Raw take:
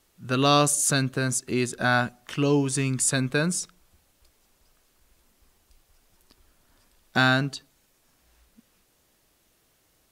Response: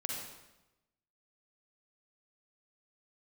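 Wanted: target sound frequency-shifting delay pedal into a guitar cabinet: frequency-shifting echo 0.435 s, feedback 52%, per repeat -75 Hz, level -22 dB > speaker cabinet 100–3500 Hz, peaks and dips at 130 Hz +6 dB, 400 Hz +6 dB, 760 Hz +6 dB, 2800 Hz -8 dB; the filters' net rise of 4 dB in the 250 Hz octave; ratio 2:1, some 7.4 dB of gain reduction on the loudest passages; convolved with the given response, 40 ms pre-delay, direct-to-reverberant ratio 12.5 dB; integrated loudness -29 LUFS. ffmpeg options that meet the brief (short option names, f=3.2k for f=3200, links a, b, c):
-filter_complex "[0:a]equalizer=f=250:t=o:g=3.5,acompressor=threshold=-28dB:ratio=2,asplit=2[a][b];[1:a]atrim=start_sample=2205,adelay=40[c];[b][c]afir=irnorm=-1:irlink=0,volume=-14.5dB[d];[a][d]amix=inputs=2:normalize=0,asplit=5[e][f][g][h][i];[f]adelay=435,afreqshift=-75,volume=-22dB[j];[g]adelay=870,afreqshift=-150,volume=-27.7dB[k];[h]adelay=1305,afreqshift=-225,volume=-33.4dB[l];[i]adelay=1740,afreqshift=-300,volume=-39dB[m];[e][j][k][l][m]amix=inputs=5:normalize=0,highpass=100,equalizer=f=130:t=q:w=4:g=6,equalizer=f=400:t=q:w=4:g=6,equalizer=f=760:t=q:w=4:g=6,equalizer=f=2.8k:t=q:w=4:g=-8,lowpass=f=3.5k:w=0.5412,lowpass=f=3.5k:w=1.3066,volume=-1.5dB"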